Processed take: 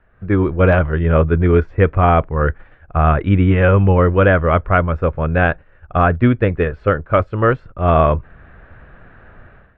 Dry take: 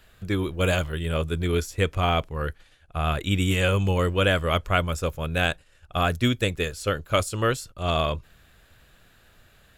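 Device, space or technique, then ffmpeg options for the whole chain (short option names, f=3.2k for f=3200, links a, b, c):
action camera in a waterproof case: -af "lowpass=f=1.8k:w=0.5412,lowpass=f=1.8k:w=1.3066,dynaudnorm=f=110:g=5:m=15dB" -ar 44100 -c:a aac -b:a 96k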